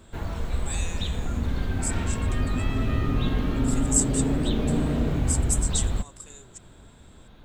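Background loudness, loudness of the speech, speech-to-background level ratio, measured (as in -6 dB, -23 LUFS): -27.5 LUFS, -30.0 LUFS, -2.5 dB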